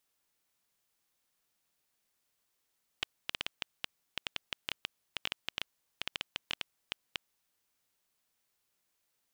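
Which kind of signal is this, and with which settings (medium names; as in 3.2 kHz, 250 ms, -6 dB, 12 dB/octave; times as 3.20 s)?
random clicks 6.9 per s -15 dBFS 4.71 s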